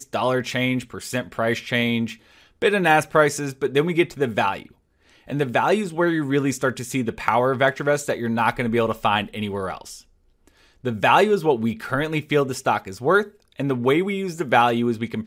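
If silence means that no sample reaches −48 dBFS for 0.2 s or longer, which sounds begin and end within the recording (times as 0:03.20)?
0:05.06–0:10.02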